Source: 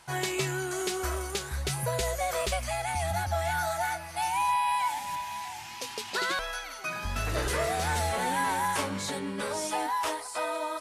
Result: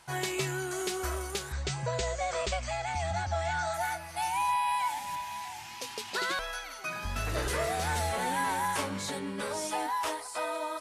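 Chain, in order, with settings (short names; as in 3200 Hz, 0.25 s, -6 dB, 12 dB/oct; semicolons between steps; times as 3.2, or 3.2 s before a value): 1.52–3.74 steep low-pass 8300 Hz 96 dB/oct; gain -2 dB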